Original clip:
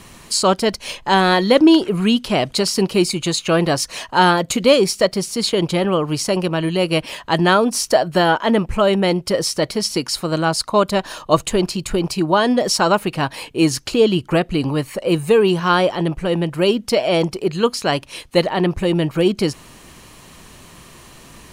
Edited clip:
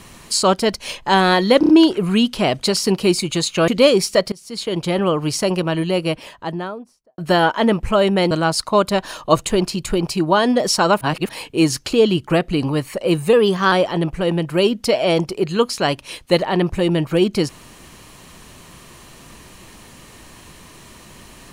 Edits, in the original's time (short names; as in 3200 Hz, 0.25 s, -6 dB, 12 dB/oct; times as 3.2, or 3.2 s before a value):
1.6 stutter 0.03 s, 4 plays
3.59–4.54 cut
5.18–5.89 fade in linear, from -23.5 dB
6.47–8.04 studio fade out
9.17–10.32 cut
13.02–13.3 reverse
15.34–15.76 speed 108%